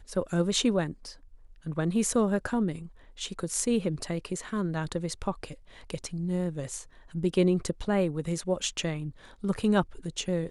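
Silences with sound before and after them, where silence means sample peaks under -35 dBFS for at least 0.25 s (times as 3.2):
1.1–1.66
2.86–3.19
5.54–5.9
6.81–7.15
9.1–9.44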